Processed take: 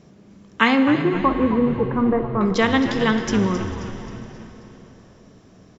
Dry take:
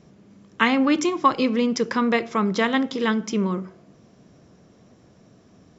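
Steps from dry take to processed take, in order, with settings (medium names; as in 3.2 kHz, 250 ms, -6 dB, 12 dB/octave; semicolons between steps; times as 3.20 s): 0.81–2.41 s: Gaussian low-pass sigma 7.1 samples; frequency-shifting echo 266 ms, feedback 50%, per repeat -110 Hz, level -11 dB; on a send at -8.5 dB: reverberation RT60 3.7 s, pre-delay 49 ms; on the sum: trim +2.5 dB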